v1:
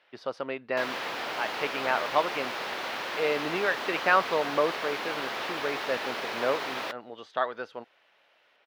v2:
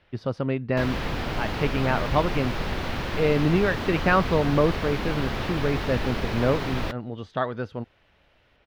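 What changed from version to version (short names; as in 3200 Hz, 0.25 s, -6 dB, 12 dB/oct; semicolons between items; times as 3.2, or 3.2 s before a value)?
master: remove HPF 560 Hz 12 dB/oct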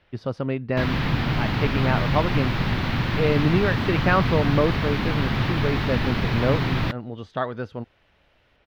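first sound: add graphic EQ 125/250/500/1000/2000/4000/8000 Hz +12/+5/-4/+3/+4/+5/-7 dB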